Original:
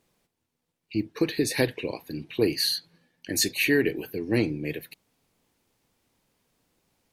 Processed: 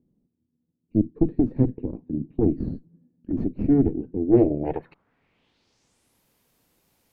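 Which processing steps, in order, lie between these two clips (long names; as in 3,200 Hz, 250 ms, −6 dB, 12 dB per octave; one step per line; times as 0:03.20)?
harmonic generator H 2 −9 dB, 6 −11 dB, 8 −24 dB, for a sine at −9 dBFS
low-pass filter sweep 250 Hz → 14,000 Hz, 0:04.13–0:06.23
level +3 dB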